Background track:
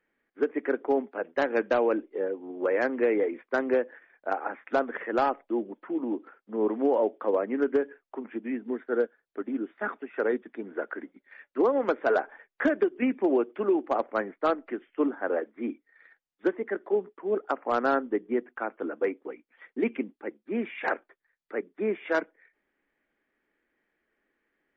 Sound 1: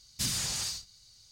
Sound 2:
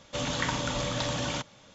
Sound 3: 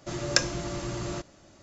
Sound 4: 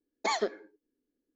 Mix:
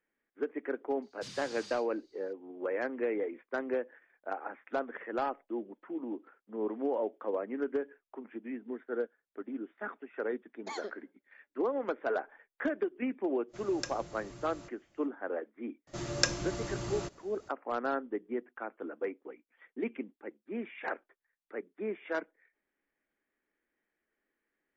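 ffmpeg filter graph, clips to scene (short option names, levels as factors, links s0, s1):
-filter_complex "[3:a]asplit=2[s0][s1];[0:a]volume=0.398[s2];[1:a]highpass=150,lowpass=4500,atrim=end=1.31,asetpts=PTS-STARTPTS,volume=0.282,afade=t=in:d=0.004:c=hsin,afade=t=out:st=1.306:d=0.004:c=hsin,adelay=1020[s3];[4:a]atrim=end=1.35,asetpts=PTS-STARTPTS,volume=0.251,afade=t=in:d=0.004:c=hsin,afade=t=out:st=1.346:d=0.004:c=hsin,adelay=459522S[s4];[s0]atrim=end=1.62,asetpts=PTS-STARTPTS,volume=0.158,afade=t=in:d=0.05,afade=t=out:st=1.57:d=0.05,adelay=13470[s5];[s1]atrim=end=1.62,asetpts=PTS-STARTPTS,volume=0.596,afade=t=in:d=0.004:c=hsin,afade=t=out:st=1.616:d=0.004:c=hsin,adelay=15870[s6];[s2][s3][s4][s5][s6]amix=inputs=5:normalize=0"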